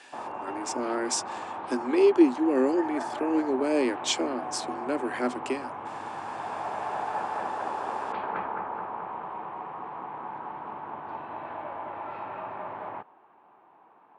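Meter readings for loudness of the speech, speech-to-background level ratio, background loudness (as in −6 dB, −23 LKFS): −27.0 LKFS, 8.5 dB, −35.5 LKFS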